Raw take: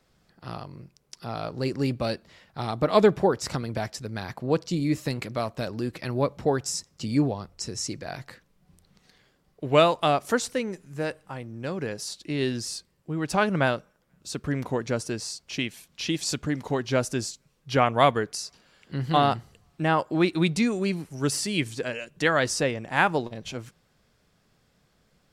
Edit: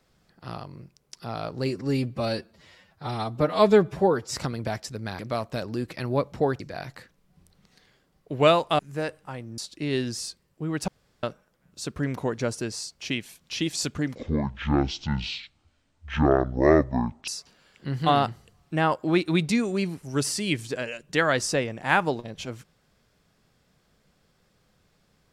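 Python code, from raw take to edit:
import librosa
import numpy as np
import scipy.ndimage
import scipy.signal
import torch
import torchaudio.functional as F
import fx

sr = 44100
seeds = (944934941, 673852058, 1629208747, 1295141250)

y = fx.edit(x, sr, fx.stretch_span(start_s=1.66, length_s=1.8, factor=1.5),
    fx.cut(start_s=4.29, length_s=0.95),
    fx.cut(start_s=6.65, length_s=1.27),
    fx.cut(start_s=10.11, length_s=0.7),
    fx.cut(start_s=11.6, length_s=0.46),
    fx.room_tone_fill(start_s=13.36, length_s=0.35),
    fx.speed_span(start_s=16.63, length_s=1.72, speed=0.55), tone=tone)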